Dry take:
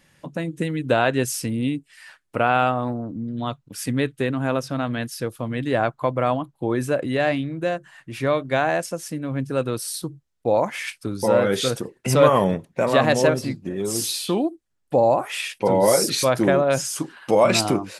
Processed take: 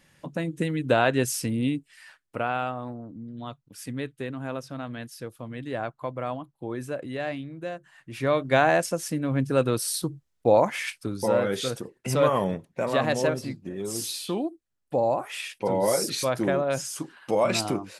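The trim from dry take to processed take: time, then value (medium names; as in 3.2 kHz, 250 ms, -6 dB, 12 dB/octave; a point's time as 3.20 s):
1.75 s -2 dB
2.65 s -10 dB
7.75 s -10 dB
8.56 s +1 dB
10.52 s +1 dB
11.56 s -6.5 dB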